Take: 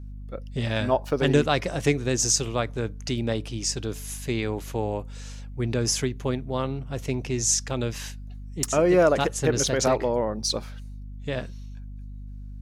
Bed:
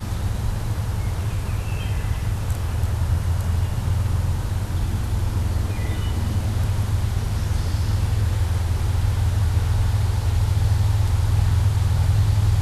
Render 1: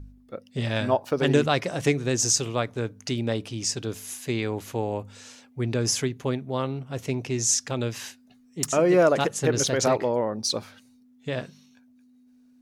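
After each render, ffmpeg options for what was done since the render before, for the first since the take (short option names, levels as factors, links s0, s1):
-af "bandreject=f=50:t=h:w=4,bandreject=f=100:t=h:w=4,bandreject=f=150:t=h:w=4,bandreject=f=200:t=h:w=4"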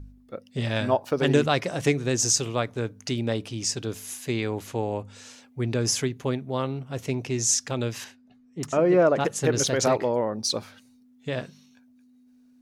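-filter_complex "[0:a]asettb=1/sr,asplit=3[s0][s1][s2];[s0]atrim=end=4.674[s3];[s1]atrim=start=4.67:end=5.16,asetpts=PTS-STARTPTS,afade=t=in:d=0.004:c=qsin,afade=t=out:st=0.486:d=0.004:c=qsin,lowpass=f=11000:w=0.5412,lowpass=f=11000:w=1.3066[s4];[s2]atrim=start=5.156[s5];[s3][s4]acrossfade=d=0.004:c1=hsin:c2=qsin[s6];[s6][s5]acrossfade=d=0.004:c1=qsin:c2=hsin,asettb=1/sr,asplit=3[s7][s8][s9];[s7]atrim=end=8.044[s10];[s8]atrim=start=8.04:end=9.25,asetpts=PTS-STARTPTS,afade=t=in:d=0.004:c=qsin,afade=t=out:st=1.206:d=0.004:c=qsin,lowpass=f=1800:p=1[s11];[s9]atrim=start=9.246[s12];[s10][s11]acrossfade=d=0.004:c1=hsin:c2=qsin[s13];[s13][s12]acrossfade=d=0.004:c1=qsin:c2=hsin"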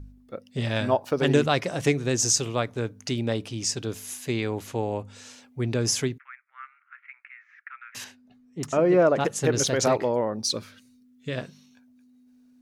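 -filter_complex "[0:a]asettb=1/sr,asplit=3[s0][s1][s2];[s0]atrim=end=6.184[s3];[s1]atrim=start=6.18:end=7.95,asetpts=PTS-STARTPTS,afade=t=in:d=0.004:c=qsin,afade=t=out:st=1.766:d=0.004:c=qsin,asuperpass=centerf=1700:order=8:qfactor=1.7[s4];[s2]atrim=start=7.946[s5];[s3][s4]acrossfade=d=0.004:c1=hsin:c2=qsin[s6];[s6][s5]acrossfade=d=0.004:c1=qsin:c2=hsin,asettb=1/sr,asplit=3[s7][s8][s9];[s7]atrim=end=10.464[s10];[s8]atrim=start=10.46:end=11.38,asetpts=PTS-STARTPTS,afade=t=in:d=0.004:c=qsin,afade=t=out:st=0.916:d=0.004:c=qsin,equalizer=f=790:t=o:w=0.56:g=-14[s11];[s9]atrim=start=11.376[s12];[s10][s11]acrossfade=d=0.004:c1=hsin:c2=qsin[s13];[s13][s12]acrossfade=d=0.004:c1=qsin:c2=hsin"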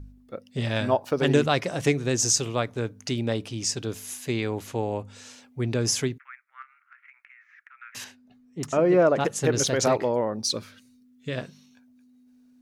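-filter_complex "[0:a]asettb=1/sr,asplit=3[s0][s1][s2];[s0]atrim=end=6.624[s3];[s1]atrim=start=6.62:end=7.8,asetpts=PTS-STARTPTS,afade=t=in:d=0.004:c=qsin,afade=t=out:st=1.176:d=0.004:c=qsin,acompressor=threshold=0.00447:ratio=6:attack=3.2:release=140:knee=1:detection=peak[s4];[s2]atrim=start=7.796[s5];[s3][s4]acrossfade=d=0.004:c1=hsin:c2=qsin[s6];[s6][s5]acrossfade=d=0.004:c1=qsin:c2=hsin"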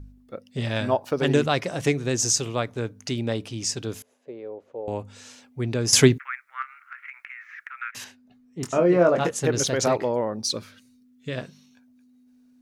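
-filter_complex "[0:a]asettb=1/sr,asplit=3[s0][s1][s2];[s0]atrim=end=4.024[s3];[s1]atrim=start=4.02:end=4.88,asetpts=PTS-STARTPTS,afade=t=in:d=0.004:c=qsin,afade=t=out:st=0.856:d=0.004:c=qsin,bandpass=f=520:t=q:w=4[s4];[s2]atrim=start=4.876[s5];[s3][s4]acrossfade=d=0.004:c1=hsin:c2=qsin[s6];[s6][s5]acrossfade=d=0.004:c1=qsin:c2=hsin,asettb=1/sr,asplit=3[s7][s8][s9];[s7]atrim=end=8.604[s10];[s8]atrim=start=8.6:end=9.4,asetpts=PTS-STARTPTS,afade=t=in:d=0.004:c=qsin,afade=t=out:st=0.796:d=0.004:c=qsin,asplit=2[s11][s12];[s12]adelay=23,volume=0.531[s13];[s11][s13]amix=inputs=2:normalize=0,atrim=end_sample=35280[s14];[s9]atrim=start=9.396[s15];[s10][s14]acrossfade=d=0.004:c1=hsin:c2=qsin[s16];[s16][s15]acrossfade=d=0.004:c1=qsin:c2=hsin,asplit=3[s17][s18][s19];[s17]atrim=end=5.932[s20];[s18]atrim=start=5.928:end=7.912,asetpts=PTS-STARTPTS,volume=3.98[s21];[s19]atrim=start=7.908[s22];[s20][s21]acrossfade=d=0.004:c1=hsin:c2=hsin[s23];[s23][s22]acrossfade=d=0.004:c1=hsin:c2=hsin"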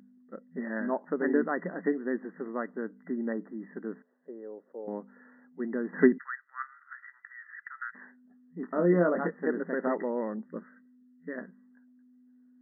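-af "equalizer=f=720:t=o:w=1.8:g=-10,afftfilt=real='re*between(b*sr/4096,170,2000)':imag='im*between(b*sr/4096,170,2000)':win_size=4096:overlap=0.75"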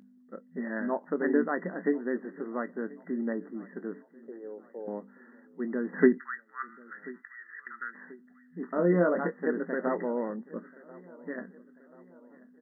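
-filter_complex "[0:a]asplit=2[s0][s1];[s1]adelay=21,volume=0.211[s2];[s0][s2]amix=inputs=2:normalize=0,aecho=1:1:1036|2072|3108:0.0794|0.0389|0.0191"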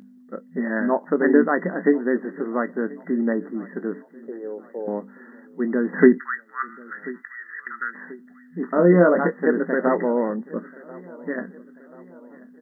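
-af "volume=2.99,alimiter=limit=0.794:level=0:latency=1"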